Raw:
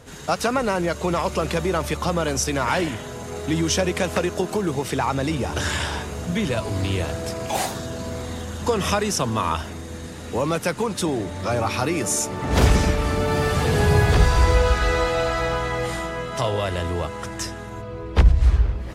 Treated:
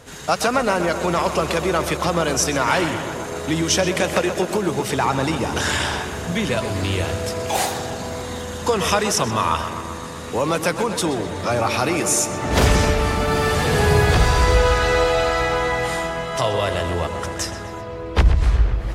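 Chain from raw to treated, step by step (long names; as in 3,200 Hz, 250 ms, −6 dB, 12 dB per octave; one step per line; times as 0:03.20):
low-shelf EQ 400 Hz −5 dB
feedback echo with a low-pass in the loop 127 ms, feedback 76%, low-pass 3,900 Hz, level −10 dB
level +4 dB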